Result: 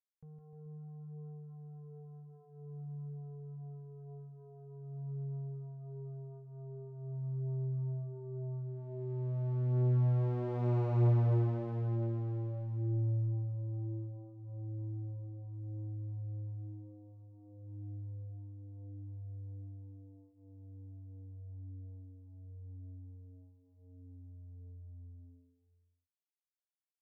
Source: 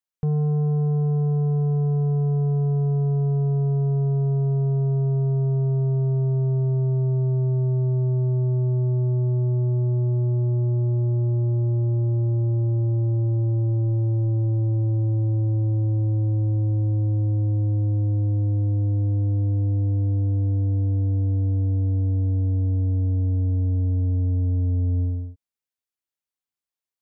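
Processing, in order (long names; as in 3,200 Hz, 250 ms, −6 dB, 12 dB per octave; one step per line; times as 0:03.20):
source passing by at 0:10.83, 7 m/s, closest 3.6 metres
asymmetric clip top −33 dBFS, bottom −22.5 dBFS
high-frequency loss of the air 58 metres
bouncing-ball delay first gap 160 ms, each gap 0.9×, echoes 5
level −4 dB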